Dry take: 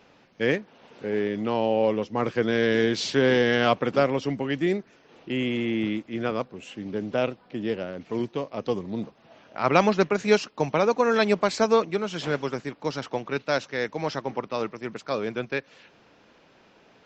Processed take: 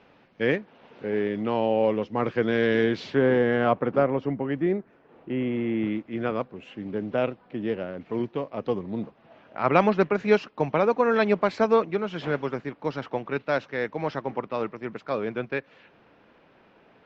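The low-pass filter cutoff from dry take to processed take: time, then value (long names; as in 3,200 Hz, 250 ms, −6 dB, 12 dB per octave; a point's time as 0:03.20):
0:02.79 3,200 Hz
0:03.28 1,500 Hz
0:05.53 1,500 Hz
0:06.19 2,600 Hz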